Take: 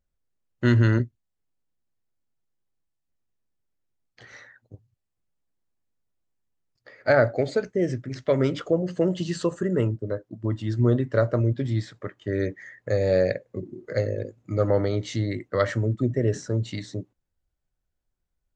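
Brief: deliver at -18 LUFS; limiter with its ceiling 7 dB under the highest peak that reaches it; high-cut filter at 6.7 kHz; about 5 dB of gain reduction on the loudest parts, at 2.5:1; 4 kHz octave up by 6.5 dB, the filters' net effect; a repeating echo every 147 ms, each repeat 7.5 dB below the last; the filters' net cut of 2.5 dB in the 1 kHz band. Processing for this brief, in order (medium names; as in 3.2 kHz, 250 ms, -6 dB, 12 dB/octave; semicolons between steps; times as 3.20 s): low-pass 6.7 kHz; peaking EQ 1 kHz -4.5 dB; peaking EQ 4 kHz +8.5 dB; compression 2.5:1, threshold -22 dBFS; peak limiter -17.5 dBFS; feedback delay 147 ms, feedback 42%, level -7.5 dB; trim +11 dB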